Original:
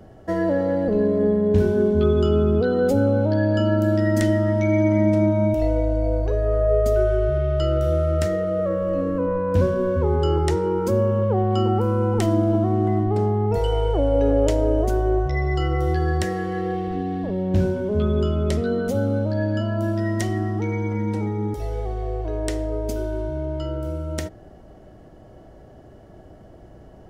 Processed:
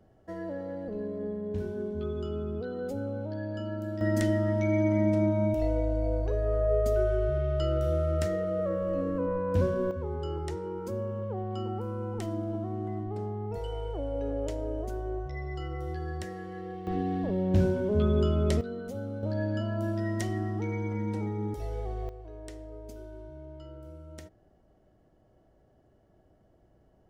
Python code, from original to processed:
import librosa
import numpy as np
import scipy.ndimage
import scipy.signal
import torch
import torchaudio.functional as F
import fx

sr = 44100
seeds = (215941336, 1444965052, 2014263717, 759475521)

y = fx.gain(x, sr, db=fx.steps((0.0, -15.5), (4.01, -7.0), (9.91, -14.0), (16.87, -4.0), (18.61, -14.5), (19.23, -7.5), (22.09, -18.0)))